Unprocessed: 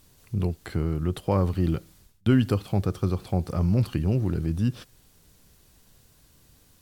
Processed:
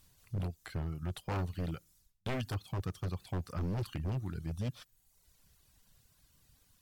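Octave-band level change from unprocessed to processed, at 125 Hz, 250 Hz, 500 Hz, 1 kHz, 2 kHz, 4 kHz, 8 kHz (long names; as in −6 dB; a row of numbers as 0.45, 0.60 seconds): −11.5 dB, −15.5 dB, −13.5 dB, −9.0 dB, −6.5 dB, −7.0 dB, can't be measured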